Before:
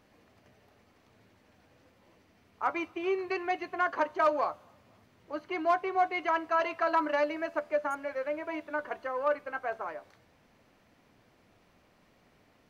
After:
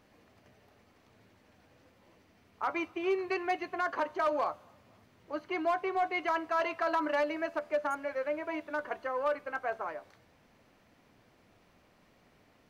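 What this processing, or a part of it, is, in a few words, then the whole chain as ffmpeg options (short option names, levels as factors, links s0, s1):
limiter into clipper: -af "alimiter=limit=0.0891:level=0:latency=1:release=47,asoftclip=type=hard:threshold=0.0708"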